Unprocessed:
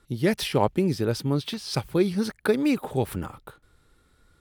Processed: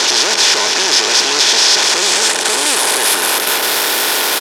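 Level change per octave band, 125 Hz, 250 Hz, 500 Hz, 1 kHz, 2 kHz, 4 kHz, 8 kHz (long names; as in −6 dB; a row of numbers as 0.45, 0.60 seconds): below −15 dB, −3.5 dB, +5.0 dB, +15.5 dB, +21.5 dB, +26.0 dB, +31.0 dB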